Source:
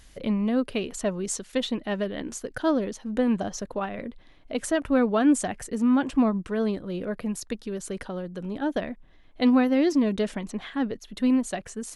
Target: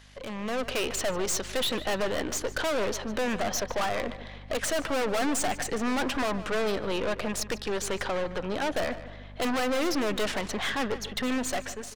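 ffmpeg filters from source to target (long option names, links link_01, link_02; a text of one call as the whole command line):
ffmpeg -i in.wav -filter_complex "[0:a]acrossover=split=470 6000:gain=0.112 1 0.2[link_01][link_02][link_03];[link_01][link_02][link_03]amix=inputs=3:normalize=0,acontrast=60,aeval=exprs='val(0)+0.00282*(sin(2*PI*50*n/s)+sin(2*PI*2*50*n/s)/2+sin(2*PI*3*50*n/s)/3+sin(2*PI*4*50*n/s)/4+sin(2*PI*5*50*n/s)/5)':channel_layout=same,aeval=exprs='(tanh(63.1*val(0)+0.55)-tanh(0.55))/63.1':channel_layout=same,dynaudnorm=framelen=190:gausssize=5:maxgain=10dB,asplit=2[link_04][link_05];[link_05]adelay=149,lowpass=frequency=4000:poles=1,volume=-13.5dB,asplit=2[link_06][link_07];[link_07]adelay=149,lowpass=frequency=4000:poles=1,volume=0.45,asplit=2[link_08][link_09];[link_09]adelay=149,lowpass=frequency=4000:poles=1,volume=0.45,asplit=2[link_10][link_11];[link_11]adelay=149,lowpass=frequency=4000:poles=1,volume=0.45[link_12];[link_06][link_08][link_10][link_12]amix=inputs=4:normalize=0[link_13];[link_04][link_13]amix=inputs=2:normalize=0" out.wav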